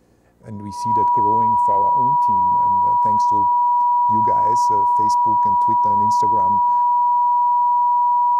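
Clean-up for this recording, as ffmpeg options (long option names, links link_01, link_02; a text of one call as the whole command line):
ffmpeg -i in.wav -af "bandreject=frequency=58.9:width_type=h:width=4,bandreject=frequency=117.8:width_type=h:width=4,bandreject=frequency=176.7:width_type=h:width=4,bandreject=frequency=235.6:width_type=h:width=4,bandreject=frequency=294.5:width_type=h:width=4,bandreject=frequency=970:width=30" out.wav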